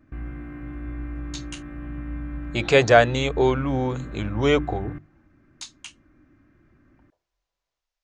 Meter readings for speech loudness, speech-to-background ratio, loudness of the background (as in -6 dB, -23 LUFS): -21.5 LUFS, 14.5 dB, -36.0 LUFS